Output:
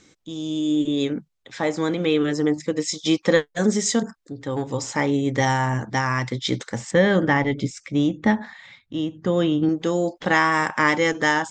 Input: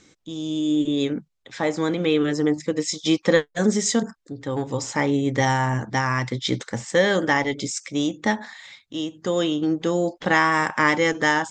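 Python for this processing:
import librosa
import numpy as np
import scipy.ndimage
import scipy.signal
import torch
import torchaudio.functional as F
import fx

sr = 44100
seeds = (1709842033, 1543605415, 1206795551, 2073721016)

y = fx.bass_treble(x, sr, bass_db=9, treble_db=-12, at=(6.91, 9.69))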